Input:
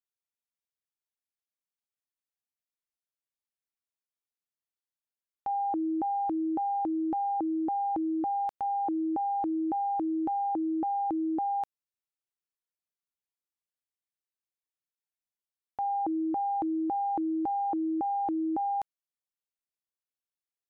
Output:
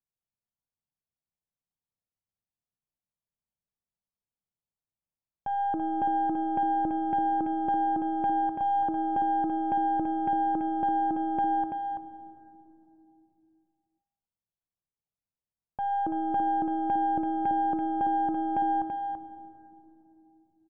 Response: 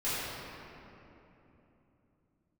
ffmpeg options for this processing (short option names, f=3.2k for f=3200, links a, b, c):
-filter_complex "[0:a]lowpass=f=1k:w=0.5412,lowpass=f=1k:w=1.3066,lowshelf=f=230:t=q:w=1.5:g=7.5,aeval=exprs='0.0631*(cos(1*acos(clip(val(0)/0.0631,-1,1)))-cos(1*PI/2))+0.0178*(cos(2*acos(clip(val(0)/0.0631,-1,1)))-cos(2*PI/2))+0.00398*(cos(4*acos(clip(val(0)/0.0631,-1,1)))-cos(4*PI/2))':c=same,aecho=1:1:334:0.531,asplit=2[a][b];[1:a]atrim=start_sample=2205,asetrate=48510,aresample=44100[c];[b][c]afir=irnorm=-1:irlink=0,volume=-18dB[d];[a][d]amix=inputs=2:normalize=0"